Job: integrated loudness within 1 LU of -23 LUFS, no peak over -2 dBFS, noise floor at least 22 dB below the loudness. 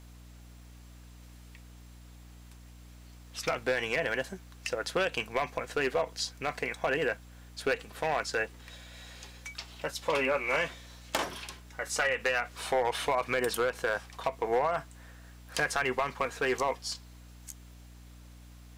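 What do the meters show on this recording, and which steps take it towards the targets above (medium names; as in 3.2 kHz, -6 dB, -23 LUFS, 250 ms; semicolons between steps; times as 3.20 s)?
clipped samples 0.4%; clipping level -20.5 dBFS; hum 60 Hz; highest harmonic 300 Hz; hum level -49 dBFS; loudness -31.5 LUFS; peak level -20.5 dBFS; loudness target -23.0 LUFS
-> clip repair -20.5 dBFS; de-hum 60 Hz, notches 5; trim +8.5 dB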